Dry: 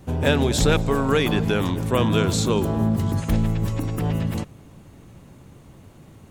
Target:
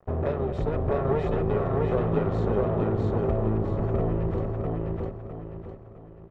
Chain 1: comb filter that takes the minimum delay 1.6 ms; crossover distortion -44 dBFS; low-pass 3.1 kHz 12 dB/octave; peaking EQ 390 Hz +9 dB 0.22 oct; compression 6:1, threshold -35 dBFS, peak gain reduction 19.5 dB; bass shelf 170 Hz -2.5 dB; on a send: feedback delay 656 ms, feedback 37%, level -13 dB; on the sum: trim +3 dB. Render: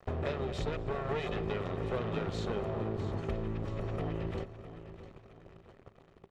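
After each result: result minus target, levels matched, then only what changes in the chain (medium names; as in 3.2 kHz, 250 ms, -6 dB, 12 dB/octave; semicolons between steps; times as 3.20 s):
4 kHz band +15.0 dB; echo-to-direct -11.5 dB; compression: peak gain reduction +7.5 dB
change: low-pass 1.1 kHz 12 dB/octave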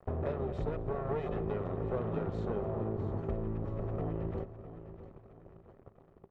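echo-to-direct -11.5 dB; compression: peak gain reduction +7.5 dB
change: feedback delay 656 ms, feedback 37%, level -1.5 dB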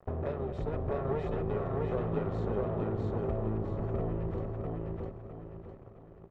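compression: peak gain reduction +7.5 dB
change: compression 6:1, threshold -26 dBFS, peak gain reduction 12 dB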